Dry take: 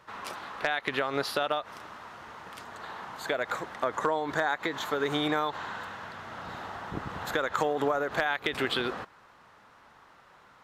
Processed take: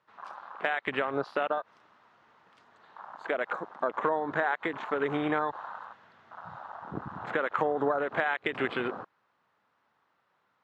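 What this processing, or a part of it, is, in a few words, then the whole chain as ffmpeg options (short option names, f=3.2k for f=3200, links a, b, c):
over-cleaned archive recording: -af "highpass=110,lowpass=5.2k,afwtdn=0.0224"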